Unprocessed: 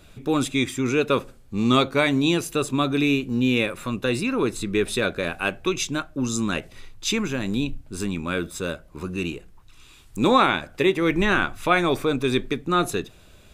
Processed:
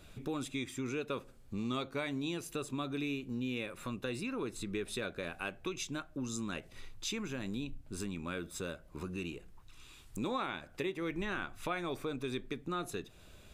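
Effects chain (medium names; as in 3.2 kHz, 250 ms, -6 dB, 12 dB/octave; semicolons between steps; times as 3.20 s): compression 2.5:1, threshold -34 dBFS, peak gain reduction 14.5 dB; trim -5.5 dB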